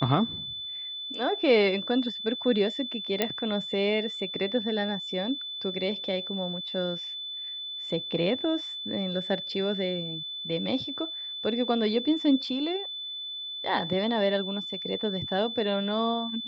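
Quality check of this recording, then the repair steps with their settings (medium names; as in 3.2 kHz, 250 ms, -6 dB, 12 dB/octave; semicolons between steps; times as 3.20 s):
whine 3.5 kHz -34 dBFS
3.22 s: pop -10 dBFS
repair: de-click; band-stop 3.5 kHz, Q 30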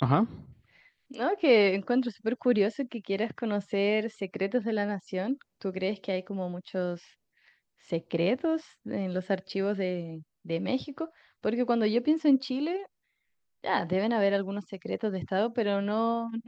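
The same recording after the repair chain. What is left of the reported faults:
nothing left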